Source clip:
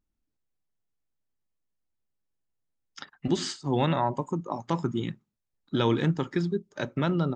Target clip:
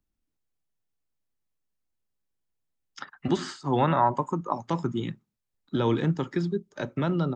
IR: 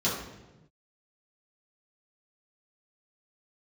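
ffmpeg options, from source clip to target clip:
-filter_complex "[0:a]asettb=1/sr,asplit=3[a][b][c];[a]atrim=end=3.004[d];[b]atrim=start=3:end=4.54,asetpts=PTS-STARTPTS,afade=t=in:d=0.004:c=qsin,afade=t=out:st=1.536:d=0.004:c=qsin,equalizer=f=1.3k:t=o:w=1.4:g=9[e];[c]atrim=start=4.536[f];[d][e]acrossfade=d=0.004:c1=hsin:c2=qsin[g];[g][f]acrossfade=d=0.004:c1=qsin:c2=hsin,acrossover=split=120|690|1400[h][i][j][k];[k]alimiter=level_in=6.5dB:limit=-24dB:level=0:latency=1:release=62,volume=-6.5dB[l];[h][i][j][l]amix=inputs=4:normalize=0"

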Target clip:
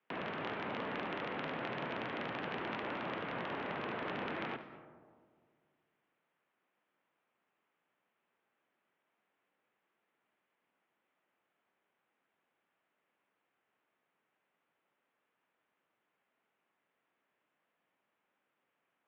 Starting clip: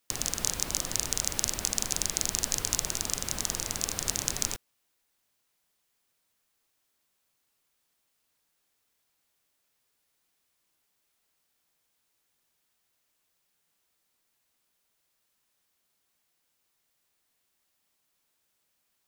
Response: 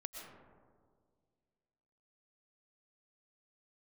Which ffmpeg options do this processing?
-filter_complex "[0:a]highpass=f=170:t=q:w=0.5412,highpass=f=170:t=q:w=1.307,lowpass=f=3.4k:t=q:w=0.5176,lowpass=f=3.4k:t=q:w=0.7071,lowpass=f=3.4k:t=q:w=1.932,afreqshift=-76,acrossover=split=160 2500:gain=0.158 1 0.126[a][b][c];[a][b][c]amix=inputs=3:normalize=0,asplit=2[d][e];[1:a]atrim=start_sample=2205,adelay=72[f];[e][f]afir=irnorm=-1:irlink=0,volume=-7.5dB[g];[d][g]amix=inputs=2:normalize=0,volume=3dB"

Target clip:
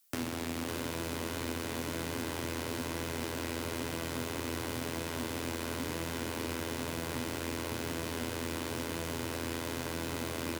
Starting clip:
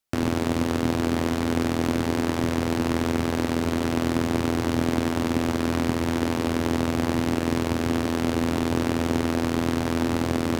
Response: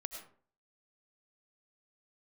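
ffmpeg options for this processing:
-filter_complex "[0:a]alimiter=limit=-19dB:level=0:latency=1:release=29,crystalizer=i=5:c=0,flanger=delay=6:depth=5.6:regen=69:speed=1:shape=sinusoidal,acrossover=split=170|3500[a][b][c];[a]acompressor=threshold=-47dB:ratio=4[d];[b]acompressor=threshold=-36dB:ratio=4[e];[c]acompressor=threshold=-46dB:ratio=4[f];[d][e][f]amix=inputs=3:normalize=0,acrusher=bits=3:mode=log:mix=0:aa=0.000001,asplit=2[g][h];[h]aecho=0:1:554:0.501[i];[g][i]amix=inputs=2:normalize=0,volume=1.5dB"

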